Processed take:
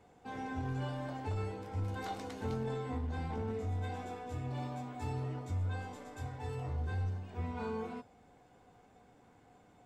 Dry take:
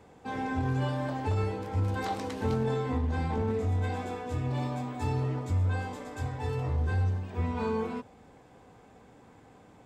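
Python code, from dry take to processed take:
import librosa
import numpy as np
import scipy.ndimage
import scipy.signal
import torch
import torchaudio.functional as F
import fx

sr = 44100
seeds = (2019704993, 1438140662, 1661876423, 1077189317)

y = fx.comb_fb(x, sr, f0_hz=720.0, decay_s=0.22, harmonics='all', damping=0.0, mix_pct=80)
y = y * 10.0 ** (5.0 / 20.0)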